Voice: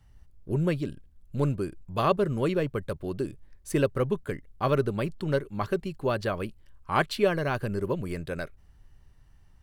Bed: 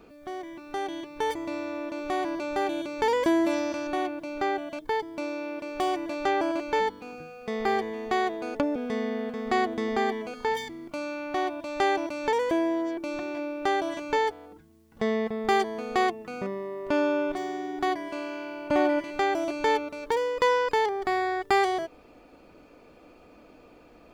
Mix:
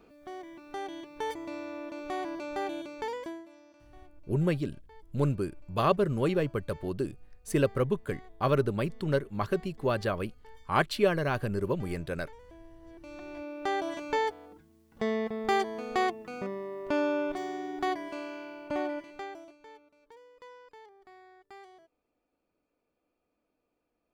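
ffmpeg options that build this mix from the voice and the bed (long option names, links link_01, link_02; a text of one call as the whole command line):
ffmpeg -i stem1.wav -i stem2.wav -filter_complex "[0:a]adelay=3800,volume=-1dB[link_01];[1:a]volume=18.5dB,afade=type=out:start_time=2.74:duration=0.72:silence=0.0794328,afade=type=in:start_time=12.8:duration=1.09:silence=0.0595662,afade=type=out:start_time=18.01:duration=1.57:silence=0.0595662[link_02];[link_01][link_02]amix=inputs=2:normalize=0" out.wav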